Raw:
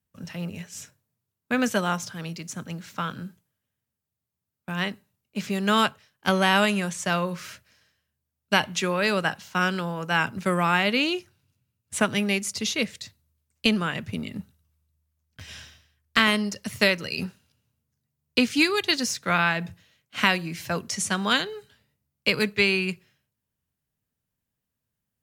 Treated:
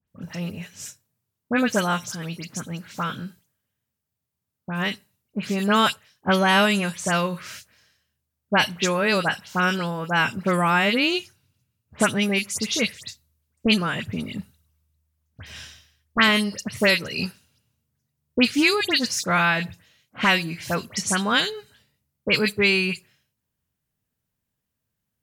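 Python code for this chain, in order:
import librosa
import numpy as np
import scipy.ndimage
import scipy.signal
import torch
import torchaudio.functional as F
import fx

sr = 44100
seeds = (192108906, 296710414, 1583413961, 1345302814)

y = fx.dispersion(x, sr, late='highs', ms=81.0, hz=2700.0)
y = F.gain(torch.from_numpy(y), 2.5).numpy()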